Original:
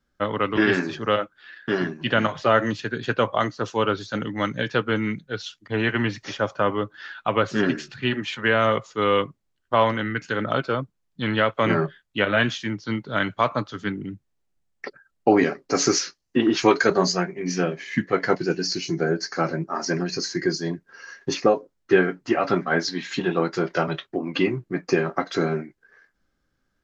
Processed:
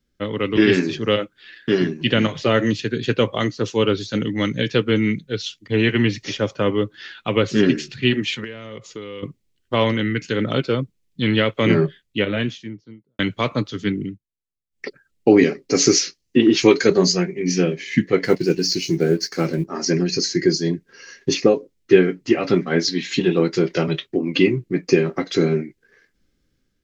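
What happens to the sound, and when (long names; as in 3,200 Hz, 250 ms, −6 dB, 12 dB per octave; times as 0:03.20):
0:08.44–0:09.23: downward compressor 16 to 1, threshold −32 dBFS
0:11.82–0:13.19: fade out and dull
0:14.04–0:14.85: duck −22.5 dB, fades 0.15 s
0:18.24–0:19.66: mu-law and A-law mismatch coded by A
whole clip: flat-topped bell 1,000 Hz −11 dB; automatic gain control gain up to 4 dB; level +2.5 dB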